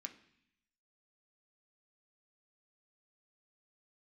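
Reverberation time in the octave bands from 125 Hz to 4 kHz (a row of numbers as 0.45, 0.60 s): 1.0, 0.95, 0.60, 0.70, 0.95, 0.95 s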